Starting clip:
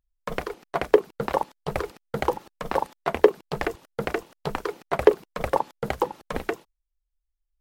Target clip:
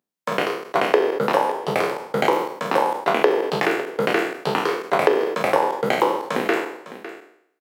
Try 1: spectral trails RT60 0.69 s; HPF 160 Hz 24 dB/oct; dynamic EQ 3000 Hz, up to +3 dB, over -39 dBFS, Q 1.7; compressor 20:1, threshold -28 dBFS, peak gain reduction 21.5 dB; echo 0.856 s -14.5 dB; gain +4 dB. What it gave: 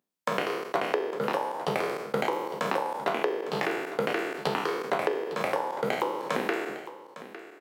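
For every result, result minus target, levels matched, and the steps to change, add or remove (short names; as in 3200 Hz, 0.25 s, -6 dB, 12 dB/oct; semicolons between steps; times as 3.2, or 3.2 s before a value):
compressor: peak gain reduction +11 dB; echo 0.301 s late
change: compressor 20:1, threshold -16.5 dBFS, peak gain reduction 10.5 dB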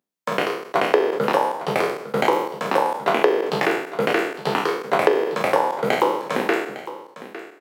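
echo 0.301 s late
change: echo 0.555 s -14.5 dB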